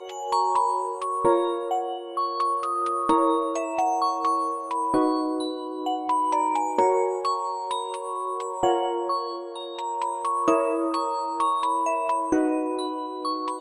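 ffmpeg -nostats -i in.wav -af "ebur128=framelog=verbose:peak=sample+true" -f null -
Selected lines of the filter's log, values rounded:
Integrated loudness:
  I:         -25.3 LUFS
  Threshold: -35.3 LUFS
Loudness range:
  LRA:         2.1 LU
  Threshold: -45.3 LUFS
  LRA low:   -26.5 LUFS
  LRA high:  -24.4 LUFS
Sample peak:
  Peak:       -7.6 dBFS
True peak:
  Peak:       -7.6 dBFS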